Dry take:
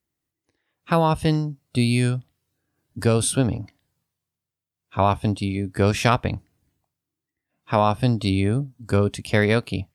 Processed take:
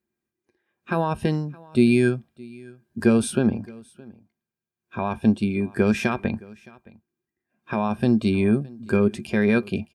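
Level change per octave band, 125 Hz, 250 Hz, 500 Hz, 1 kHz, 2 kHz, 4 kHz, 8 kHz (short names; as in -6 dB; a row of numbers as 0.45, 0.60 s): -5.0, +3.5, -0.5, -6.5, -1.0, -7.5, -7.5 dB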